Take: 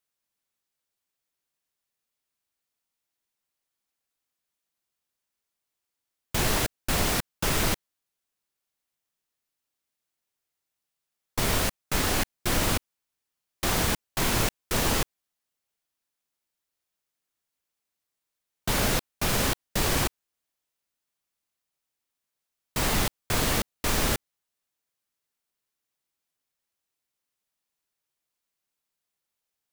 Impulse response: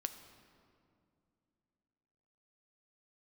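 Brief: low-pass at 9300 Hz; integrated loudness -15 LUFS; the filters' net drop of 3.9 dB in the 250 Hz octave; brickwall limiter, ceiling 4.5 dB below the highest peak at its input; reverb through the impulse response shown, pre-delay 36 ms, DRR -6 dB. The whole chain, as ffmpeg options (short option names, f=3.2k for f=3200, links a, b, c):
-filter_complex "[0:a]lowpass=9.3k,equalizer=f=250:t=o:g=-5.5,alimiter=limit=-17.5dB:level=0:latency=1,asplit=2[a][b];[1:a]atrim=start_sample=2205,adelay=36[c];[b][c]afir=irnorm=-1:irlink=0,volume=7dB[d];[a][d]amix=inputs=2:normalize=0,volume=8dB"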